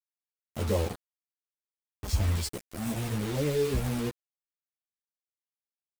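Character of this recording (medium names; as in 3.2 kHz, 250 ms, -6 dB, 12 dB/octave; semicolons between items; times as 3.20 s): random-step tremolo, depth 70%; a quantiser's noise floor 6-bit, dither none; a shimmering, thickened sound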